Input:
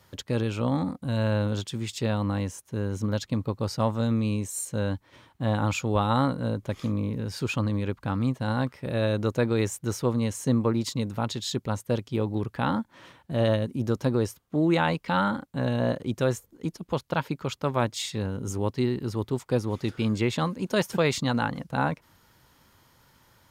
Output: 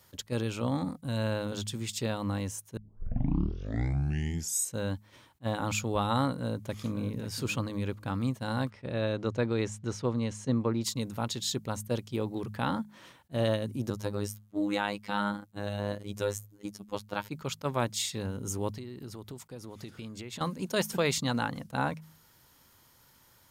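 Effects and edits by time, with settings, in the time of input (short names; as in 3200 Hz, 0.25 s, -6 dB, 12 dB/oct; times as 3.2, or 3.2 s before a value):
2.77 tape start 1.99 s
6.31–7.05 echo throw 0.54 s, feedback 20%, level -11.5 dB
8.7–10.83 air absorption 110 m
13.9–17.29 robotiser 102 Hz
18.73–20.41 compressor 16:1, threshold -33 dBFS
whole clip: high shelf 5300 Hz +10 dB; de-hum 52.66 Hz, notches 4; attack slew limiter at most 570 dB/s; gain -4.5 dB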